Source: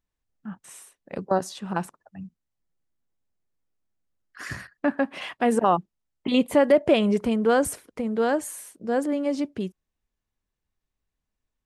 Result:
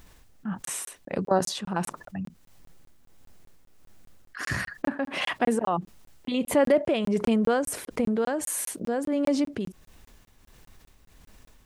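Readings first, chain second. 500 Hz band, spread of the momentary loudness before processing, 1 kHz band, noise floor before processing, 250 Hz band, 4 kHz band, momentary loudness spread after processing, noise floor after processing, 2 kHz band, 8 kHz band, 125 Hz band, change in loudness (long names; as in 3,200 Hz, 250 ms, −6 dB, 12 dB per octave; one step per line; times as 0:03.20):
−3.0 dB, 20 LU, −3.5 dB, −84 dBFS, −2.0 dB, 0.0 dB, 13 LU, −57 dBFS, −0.5 dB, +4.5 dB, +0.5 dB, −3.0 dB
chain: amplitude tremolo 1.5 Hz, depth 76%
regular buffer underruns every 0.20 s, samples 1,024, zero, from 0:00.65
envelope flattener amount 50%
level −3 dB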